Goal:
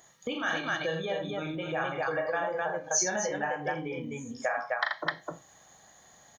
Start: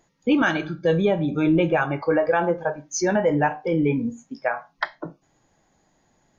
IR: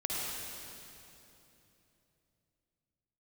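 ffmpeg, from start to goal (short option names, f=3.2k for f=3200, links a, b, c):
-filter_complex "[0:a]equalizer=f=800:t=o:w=0.33:g=5,equalizer=f=2.5k:t=o:w=0.33:g=-9,equalizer=f=5k:t=o:w=0.33:g=-10,asplit=2[a][b];[b]aecho=0:1:37.9|81.63|256.6:0.631|0.501|0.708[c];[a][c]amix=inputs=2:normalize=0,acompressor=threshold=-31dB:ratio=5,highpass=52,tiltshelf=f=1.2k:g=-8.5,aecho=1:1:1.7:0.34,volume=4.5dB"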